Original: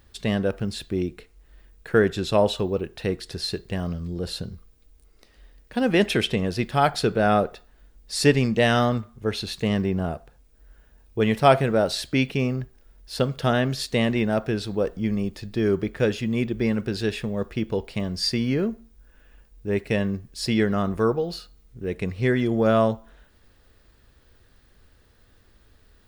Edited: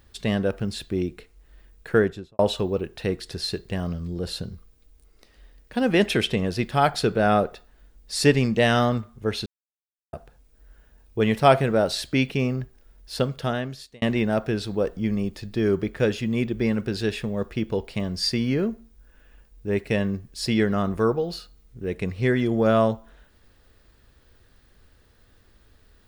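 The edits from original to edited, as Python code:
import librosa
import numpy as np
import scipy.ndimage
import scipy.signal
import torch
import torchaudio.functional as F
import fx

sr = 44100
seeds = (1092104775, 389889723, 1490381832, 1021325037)

y = fx.studio_fade_out(x, sr, start_s=1.91, length_s=0.48)
y = fx.edit(y, sr, fx.silence(start_s=9.46, length_s=0.67),
    fx.fade_out_span(start_s=13.15, length_s=0.87), tone=tone)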